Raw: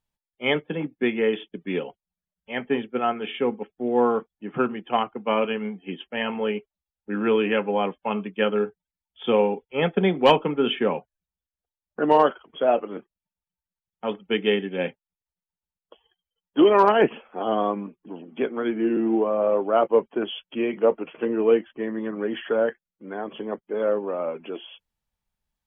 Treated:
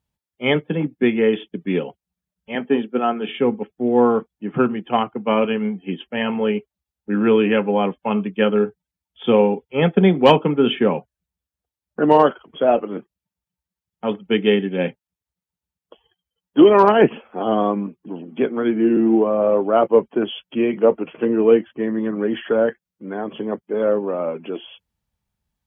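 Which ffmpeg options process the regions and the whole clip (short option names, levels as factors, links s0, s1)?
-filter_complex "[0:a]asettb=1/sr,asplit=3[s0][s1][s2];[s0]atrim=end=2.554[s3];[s1]atrim=start=2.55:end=3.29,asetpts=PTS-STARTPTS,afade=t=in:d=0.004:c=qsin,afade=t=out:st=0.736:d=0.004:c=qsin,highpass=f=170:w=0.5412,highpass=f=170:w=1.3066,equalizer=f=2100:w=5.5:g=-6.5[s4];[s2]atrim=start=3.286[s5];[s3][s4]acrossfade=d=0.004:c1=hsin:c2=qsin[s6];[s6][s5]acrossfade=d=0.004:c1=qsin:c2=hsin,highpass=63,lowshelf=f=250:g=10,volume=1.33"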